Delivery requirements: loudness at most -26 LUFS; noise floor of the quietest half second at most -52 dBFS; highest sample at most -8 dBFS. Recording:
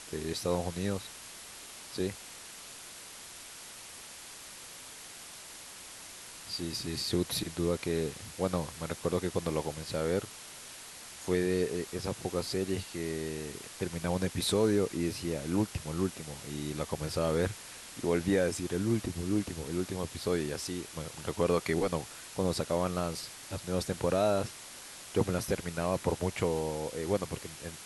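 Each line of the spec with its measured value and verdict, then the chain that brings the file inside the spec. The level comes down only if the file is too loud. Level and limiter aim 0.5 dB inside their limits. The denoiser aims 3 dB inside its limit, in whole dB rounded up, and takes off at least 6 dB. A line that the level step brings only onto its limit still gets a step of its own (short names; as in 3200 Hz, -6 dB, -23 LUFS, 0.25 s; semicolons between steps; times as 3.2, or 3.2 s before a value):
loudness -33.0 LUFS: OK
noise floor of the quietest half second -48 dBFS: fail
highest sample -14.0 dBFS: OK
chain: denoiser 7 dB, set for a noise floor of -48 dBFS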